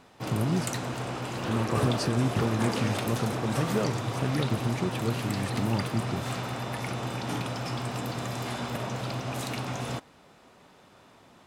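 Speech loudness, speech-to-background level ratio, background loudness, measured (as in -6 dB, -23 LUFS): -31.0 LUFS, 1.5 dB, -32.5 LUFS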